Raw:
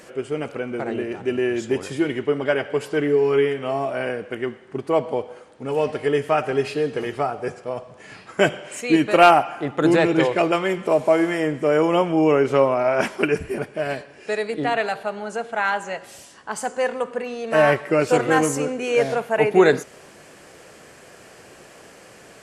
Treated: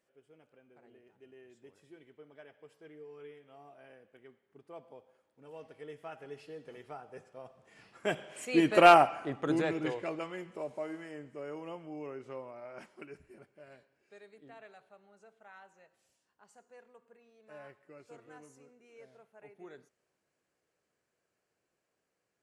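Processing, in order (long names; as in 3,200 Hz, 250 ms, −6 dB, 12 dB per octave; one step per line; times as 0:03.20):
source passing by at 0:08.87, 14 m/s, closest 4.4 metres
level −6 dB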